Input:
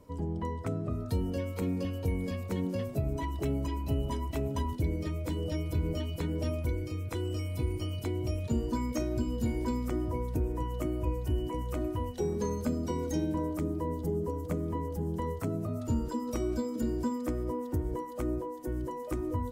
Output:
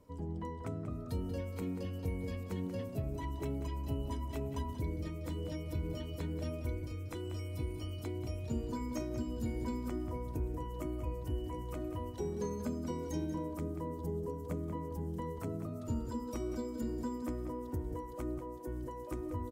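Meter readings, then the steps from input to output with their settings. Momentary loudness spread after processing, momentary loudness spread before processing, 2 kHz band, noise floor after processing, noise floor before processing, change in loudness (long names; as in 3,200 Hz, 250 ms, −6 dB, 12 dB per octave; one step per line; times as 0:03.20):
3 LU, 3 LU, −6.0 dB, −44 dBFS, −39 dBFS, −6.0 dB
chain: slap from a distant wall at 32 metres, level −9 dB
level −6.5 dB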